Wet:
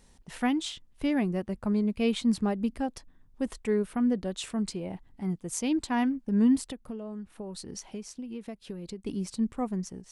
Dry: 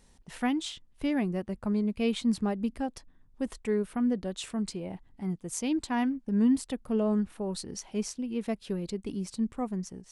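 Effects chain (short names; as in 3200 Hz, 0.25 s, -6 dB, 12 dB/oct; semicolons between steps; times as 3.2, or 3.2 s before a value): 6.63–9.06 compressor 10:1, threshold -37 dBFS, peak gain reduction 14 dB; gain +1.5 dB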